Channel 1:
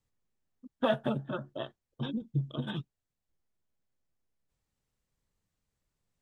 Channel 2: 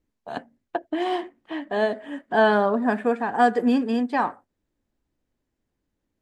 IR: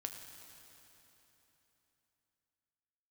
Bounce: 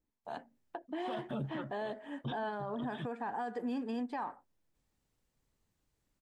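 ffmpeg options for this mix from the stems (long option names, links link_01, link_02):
-filter_complex "[0:a]adelay=250,volume=2dB[link_01];[1:a]acompressor=threshold=-26dB:ratio=2,equalizer=frequency=890:width_type=o:width=0.45:gain=5.5,volume=-9.5dB,asplit=2[link_02][link_03];[link_03]apad=whole_len=284944[link_04];[link_01][link_04]sidechaincompress=threshold=-49dB:ratio=3:attack=11:release=184[link_05];[link_05][link_02]amix=inputs=2:normalize=0,alimiter=level_in=6dB:limit=-24dB:level=0:latency=1:release=28,volume=-6dB"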